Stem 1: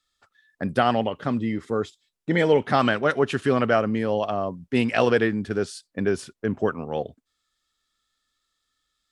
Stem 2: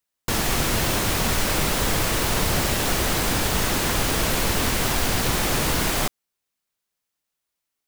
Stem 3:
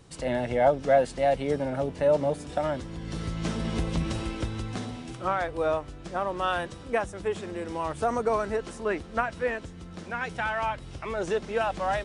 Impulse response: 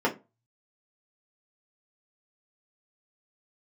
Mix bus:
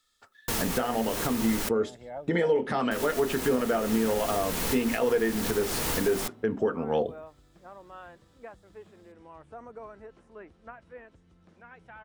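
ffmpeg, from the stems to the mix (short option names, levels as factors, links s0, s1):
-filter_complex "[0:a]volume=1.19,asplit=2[s0][s1];[s1]volume=0.0841[s2];[1:a]adelay=200,volume=0.398,asplit=3[s3][s4][s5];[s3]atrim=end=1.69,asetpts=PTS-STARTPTS,afade=t=out:st=1.686:d=0.004:c=hsin[s6];[s4]atrim=start=1.69:end=2.91,asetpts=PTS-STARTPTS,volume=0[s7];[s5]atrim=start=2.91,asetpts=PTS-STARTPTS,afade=t=in:d=0.004:c=hsin[s8];[s6][s7][s8]concat=n=3:v=0:a=1,asplit=2[s9][s10];[s10]volume=0.075[s11];[2:a]acrossover=split=2600[s12][s13];[s13]acompressor=threshold=0.00126:ratio=4:attack=1:release=60[s14];[s12][s14]amix=inputs=2:normalize=0,adelay=1500,volume=0.126[s15];[s0][s9]amix=inputs=2:normalize=0,highshelf=f=7100:g=6.5,acompressor=threshold=0.0708:ratio=6,volume=1[s16];[3:a]atrim=start_sample=2205[s17];[s2][s11]amix=inputs=2:normalize=0[s18];[s18][s17]afir=irnorm=-1:irlink=0[s19];[s15][s16][s19]amix=inputs=3:normalize=0,alimiter=limit=0.168:level=0:latency=1:release=317"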